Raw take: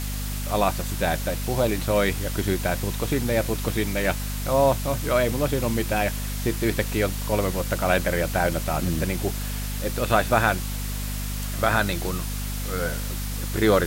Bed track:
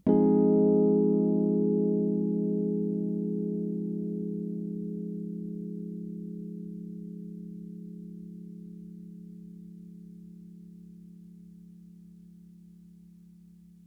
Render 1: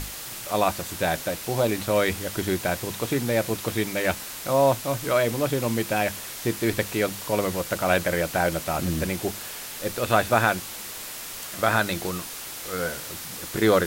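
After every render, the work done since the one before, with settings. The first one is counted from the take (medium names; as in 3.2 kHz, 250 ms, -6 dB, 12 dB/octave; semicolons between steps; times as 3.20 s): hum notches 50/100/150/200/250 Hz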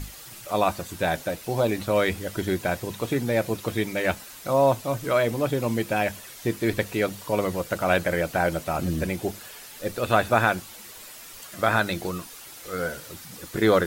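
noise reduction 9 dB, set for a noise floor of -37 dBFS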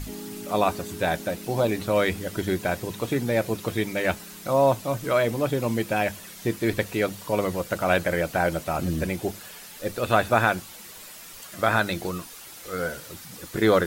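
add bed track -16 dB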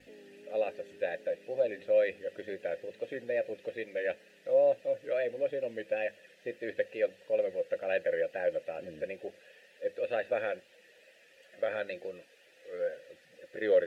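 wow and flutter 72 cents; vowel filter e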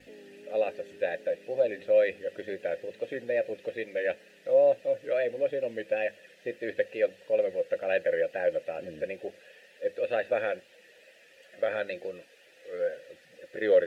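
trim +3.5 dB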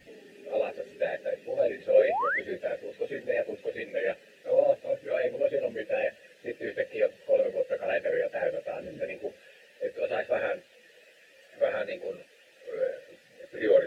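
phase randomisation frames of 50 ms; 1.98–2.40 s: painted sound rise 380–2200 Hz -28 dBFS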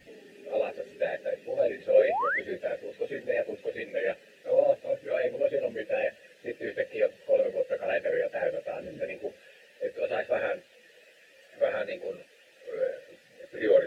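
no audible change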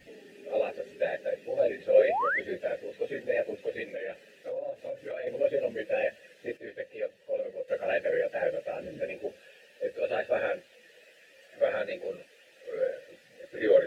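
3.89–5.27 s: compression 5:1, threshold -33 dBFS; 6.57–7.68 s: gain -8 dB; 9.06–10.48 s: band-stop 2 kHz, Q 11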